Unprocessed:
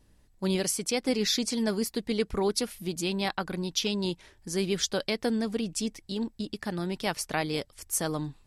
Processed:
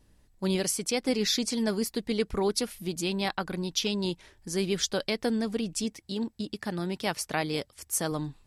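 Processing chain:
0:05.84–0:08.12: high-pass filter 56 Hz

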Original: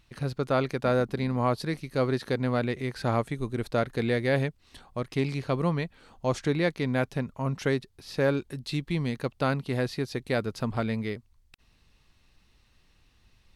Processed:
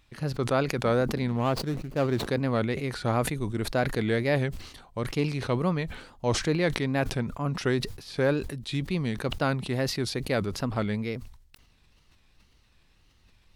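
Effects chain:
0:01.28–0:02.27: running median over 25 samples
tape wow and flutter 130 cents
level that may fall only so fast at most 82 dB per second

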